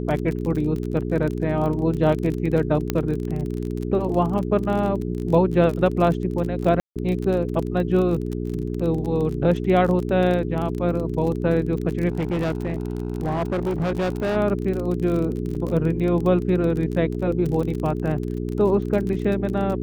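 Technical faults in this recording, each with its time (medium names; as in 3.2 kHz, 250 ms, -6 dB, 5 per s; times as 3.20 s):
crackle 33 per s -27 dBFS
hum 60 Hz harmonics 7 -27 dBFS
2.90 s: pop -8 dBFS
6.80–6.96 s: dropout 157 ms
12.08–14.37 s: clipped -20 dBFS
15.55 s: dropout 4.7 ms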